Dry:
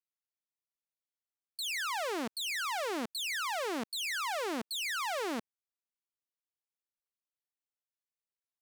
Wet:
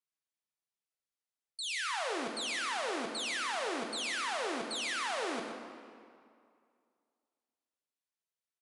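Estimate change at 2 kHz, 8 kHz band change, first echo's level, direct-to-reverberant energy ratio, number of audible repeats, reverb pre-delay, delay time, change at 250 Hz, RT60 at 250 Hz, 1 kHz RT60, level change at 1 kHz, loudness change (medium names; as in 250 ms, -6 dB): 0.0 dB, -0.5 dB, -9.5 dB, 2.0 dB, 1, 3 ms, 122 ms, -2.0 dB, 2.2 s, 2.3 s, -0.5 dB, -0.5 dB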